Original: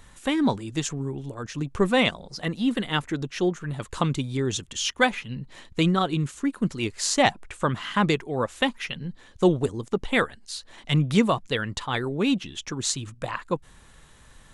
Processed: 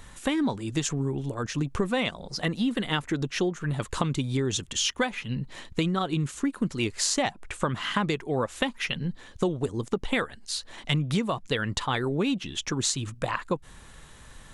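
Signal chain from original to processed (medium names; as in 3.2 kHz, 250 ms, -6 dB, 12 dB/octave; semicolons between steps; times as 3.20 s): compression 10:1, threshold -26 dBFS, peak gain reduction 13 dB; trim +3.5 dB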